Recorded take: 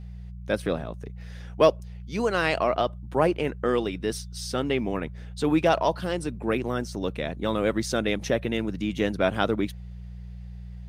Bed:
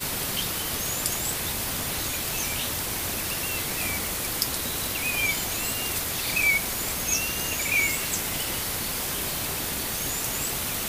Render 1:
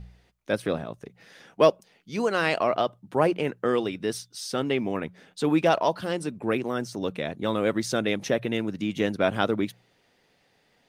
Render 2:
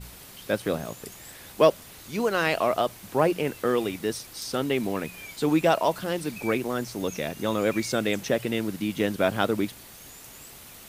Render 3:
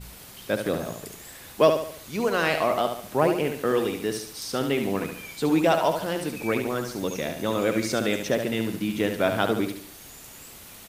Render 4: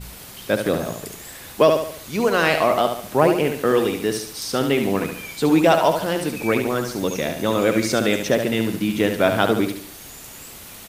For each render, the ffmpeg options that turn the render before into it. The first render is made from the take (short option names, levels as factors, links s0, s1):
-af "bandreject=f=60:t=h:w=4,bandreject=f=120:t=h:w=4,bandreject=f=180:t=h:w=4"
-filter_complex "[1:a]volume=0.141[s0];[0:a][s0]amix=inputs=2:normalize=0"
-af "aecho=1:1:71|142|213|284|355:0.447|0.192|0.0826|0.0355|0.0153"
-af "volume=1.88,alimiter=limit=0.708:level=0:latency=1"